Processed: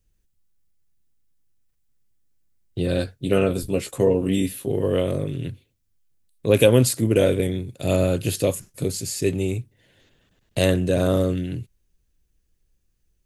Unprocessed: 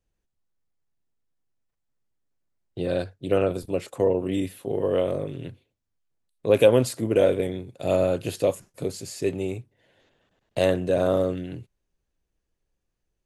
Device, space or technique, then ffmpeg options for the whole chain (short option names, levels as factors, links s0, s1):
smiley-face EQ: -filter_complex "[0:a]asettb=1/sr,asplit=3[s0][s1][s2];[s0]atrim=end=2.964[s3];[s1]atrim=start=2.96:end=4.7,asetpts=PTS-STARTPTS,afade=t=in:d=0.004:c=qsin,afade=t=out:st=1.736:d=0.004:c=qsin,asplit=2[s4][s5];[s5]adelay=15,volume=0.501[s6];[s4][s6]amix=inputs=2:normalize=0,atrim=end_sample=76734[s7];[s2]atrim=start=4.696[s8];[s3][s7]acrossfade=d=0.004:c1=hsin:c2=qsin[s9];[s9][s8]acrossfade=d=0.004:c1=qsin:c2=hsin,lowshelf=f=120:g=6.5,equalizer=f=750:t=o:w=1.7:g=-8,highshelf=f=8000:g=8.5,volume=1.88"